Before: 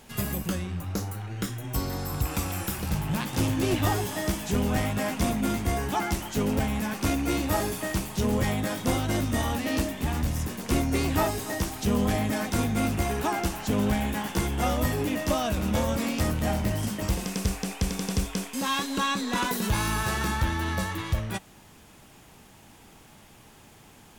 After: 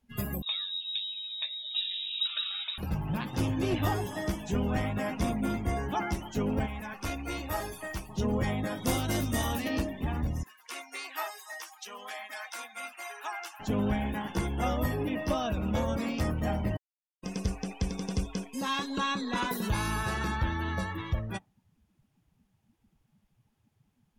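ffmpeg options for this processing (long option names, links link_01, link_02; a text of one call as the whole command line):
ffmpeg -i in.wav -filter_complex "[0:a]asettb=1/sr,asplit=3[link_01][link_02][link_03];[link_01]atrim=end=0.424[link_04];[link_02]atrim=start=0.42:end=2.78,asetpts=PTS-STARTPTS,afade=type=in:duration=0.004:curve=qsin,afade=type=out:start_time=2.356:duration=0.004:curve=qsin,lowpass=frequency=3300:width_type=q:width=0.5098,lowpass=frequency=3300:width_type=q:width=0.6013,lowpass=frequency=3300:width_type=q:width=0.9,lowpass=frequency=3300:width_type=q:width=2.563,afreqshift=-3900[link_05];[link_03]atrim=start=2.776[link_06];[link_04][link_05]acrossfade=duration=0.004:curve1=hsin:curve2=qsin[link_07];[link_07][link_06]acrossfade=duration=0.004:curve1=qsin:curve2=hsin,asettb=1/sr,asplit=3[link_08][link_09][link_10];[link_08]atrim=end=6.664[link_11];[link_09]atrim=start=6.66:end=8.09,asetpts=PTS-STARTPTS,afade=type=in:duration=0.004:curve=qsin,afade=type=out:start_time=1.426:duration=0.004:curve=qsin,equalizer=frequency=200:width_type=o:width=2.5:gain=-10[link_12];[link_10]atrim=start=8.086[link_13];[link_11][link_12]acrossfade=duration=0.004:curve1=hsin:curve2=qsin[link_14];[link_14][link_13]acrossfade=duration=0.004:curve1=qsin:curve2=hsin,asettb=1/sr,asplit=3[link_15][link_16][link_17];[link_15]atrim=end=8.824[link_18];[link_16]atrim=start=8.82:end=9.68,asetpts=PTS-STARTPTS,afade=type=in:duration=0.004:curve=qsin,afade=type=out:start_time=0.856:duration=0.004:curve=qsin,highshelf=frequency=3300:gain=7.5[link_19];[link_17]atrim=start=9.676[link_20];[link_18][link_19]acrossfade=duration=0.004:curve1=hsin:curve2=qsin[link_21];[link_21][link_20]acrossfade=duration=0.004:curve1=qsin:curve2=hsin,asettb=1/sr,asplit=3[link_22][link_23][link_24];[link_22]atrim=end=10.434[link_25];[link_23]atrim=start=10.43:end=13.6,asetpts=PTS-STARTPTS,afade=type=in:duration=0.004:curve=qsin,afade=type=out:start_time=3.166:duration=0.004:curve=qsin,highpass=1100[link_26];[link_24]atrim=start=13.596[link_27];[link_25][link_26]acrossfade=duration=0.004:curve1=hsin:curve2=qsin[link_28];[link_28][link_27]acrossfade=duration=0.004:curve1=qsin:curve2=hsin,asettb=1/sr,asplit=3[link_29][link_30][link_31];[link_29]atrim=end=14.924[link_32];[link_30]atrim=start=14.92:end=15.47,asetpts=PTS-STARTPTS,afade=type=in:duration=0.004:curve=qsin,afade=type=out:start_time=0.546:duration=0.004:curve=qsin,bandreject=frequency=6800:width=7.1[link_33];[link_31]atrim=start=15.466[link_34];[link_32][link_33]acrossfade=duration=0.004:curve1=hsin:curve2=qsin[link_35];[link_35][link_34]acrossfade=duration=0.004:curve1=qsin:curve2=hsin,asplit=3[link_36][link_37][link_38];[link_36]atrim=end=16.77,asetpts=PTS-STARTPTS,afade=type=out:start_time=16.766:duration=0.004:curve=hsin[link_39];[link_37]atrim=start=16.77:end=17.23,asetpts=PTS-STARTPTS,volume=0[link_40];[link_38]atrim=start=17.23,asetpts=PTS-STARTPTS,afade=type=in:duration=0.004:curve=hsin[link_41];[link_39][link_40][link_41]concat=n=3:v=0:a=1,afftdn=noise_reduction=24:noise_floor=-39,equalizer=frequency=7800:width_type=o:width=0.38:gain=-4,volume=-3.5dB" out.wav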